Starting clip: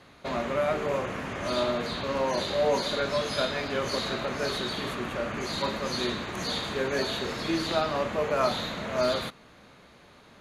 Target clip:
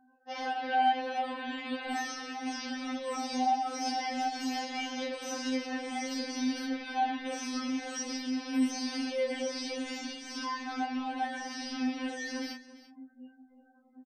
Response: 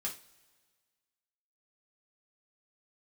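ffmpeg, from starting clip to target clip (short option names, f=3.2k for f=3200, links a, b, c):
-filter_complex "[0:a]highpass=f=140:p=1,afftfilt=real='re*gte(hypot(re,im),0.00631)':imag='im*gte(hypot(re,im),0.00631)':win_size=1024:overlap=0.75,asubboost=boost=6:cutoff=190,acrossover=split=4800[a][b];[b]acompressor=threshold=-46dB:ratio=4:attack=1:release=60[c];[a][c]amix=inputs=2:normalize=0,equalizer=f=990:w=6.8:g=-7,acompressor=threshold=-29dB:ratio=16,asetrate=78577,aresample=44100,atempo=0.561231,flanger=delay=19.5:depth=4.4:speed=2.2,aecho=1:1:251:0.141,asetrate=32667,aresample=44100,afftfilt=real='re*3.46*eq(mod(b,12),0)':imag='im*3.46*eq(mod(b,12),0)':win_size=2048:overlap=0.75,volume=3.5dB"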